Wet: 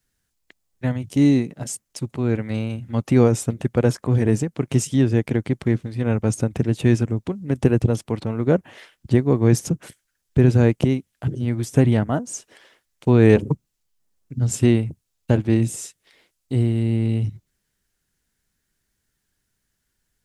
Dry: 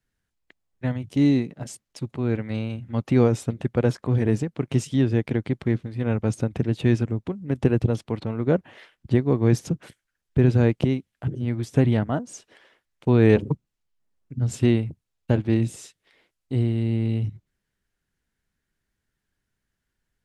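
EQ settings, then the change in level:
bass and treble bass 0 dB, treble +9 dB
dynamic equaliser 4,100 Hz, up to −6 dB, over −51 dBFS, Q 1.5
+3.0 dB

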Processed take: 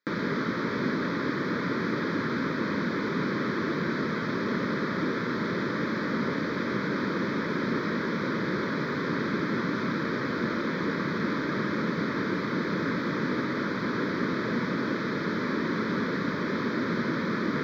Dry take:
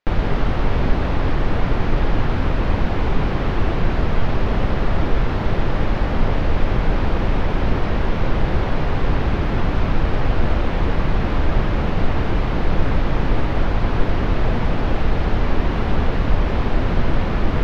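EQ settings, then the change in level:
high-pass filter 190 Hz 24 dB per octave
phaser with its sweep stopped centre 2,800 Hz, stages 6
0.0 dB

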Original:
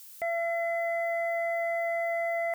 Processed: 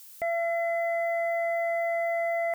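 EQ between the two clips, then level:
low-shelf EQ 440 Hz +7.5 dB
0.0 dB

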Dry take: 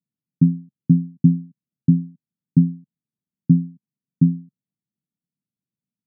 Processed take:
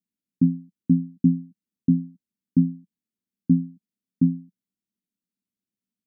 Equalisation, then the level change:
parametric band 180 Hz +8.5 dB 0.73 octaves
phaser with its sweep stopped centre 360 Hz, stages 4
0.0 dB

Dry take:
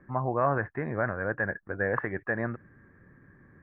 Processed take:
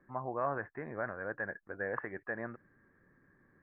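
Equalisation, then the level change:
high-frequency loss of the air 210 metres
parametric band 87 Hz −9.5 dB 2.5 octaves
−6.5 dB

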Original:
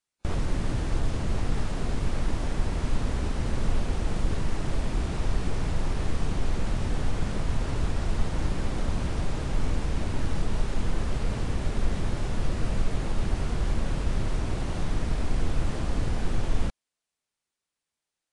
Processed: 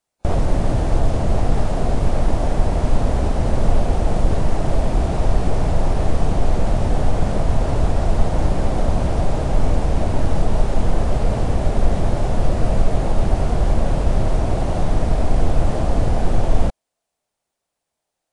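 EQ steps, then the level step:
low-shelf EQ 340 Hz +7.5 dB
parametric band 670 Hz +13 dB 1.1 octaves
high-shelf EQ 7,200 Hz +5.5 dB
+2.0 dB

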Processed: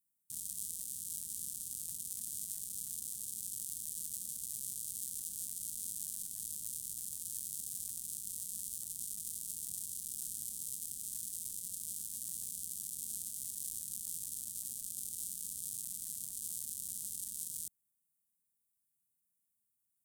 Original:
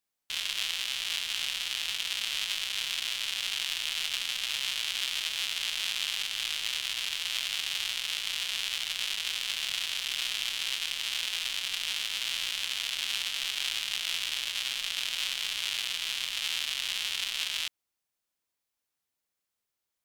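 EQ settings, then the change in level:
high-pass filter 120 Hz 6 dB per octave
Chebyshev band-stop filter 210–8,700 Hz, order 3
+5.0 dB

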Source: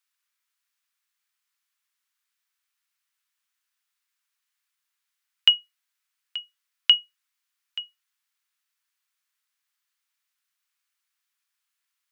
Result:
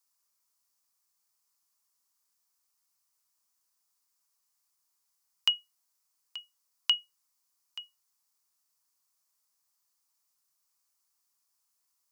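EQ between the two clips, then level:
flat-topped bell 2,300 Hz −14 dB
+5.0 dB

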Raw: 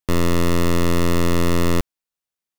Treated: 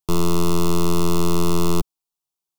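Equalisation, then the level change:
phaser with its sweep stopped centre 360 Hz, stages 8
+2.0 dB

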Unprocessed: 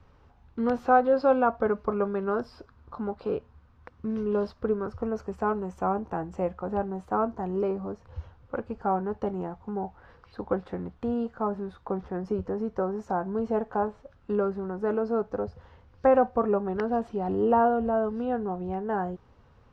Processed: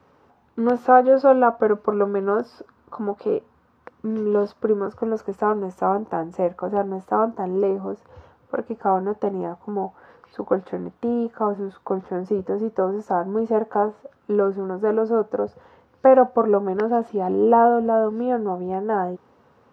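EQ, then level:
high-pass filter 230 Hz 12 dB per octave
parametric band 3,600 Hz −6.5 dB 2.5 octaves
+8.0 dB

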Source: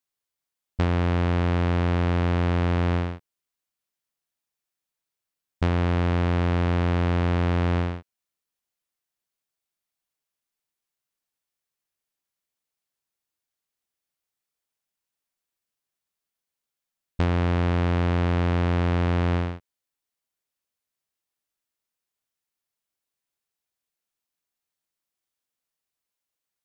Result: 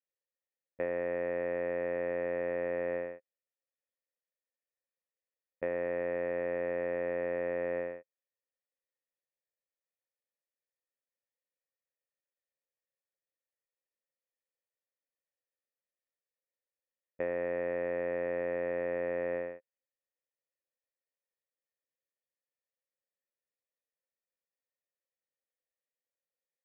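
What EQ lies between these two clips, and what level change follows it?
formant resonators in series e
band-pass filter 300–3,300 Hz
high-frequency loss of the air 94 metres
+5.5 dB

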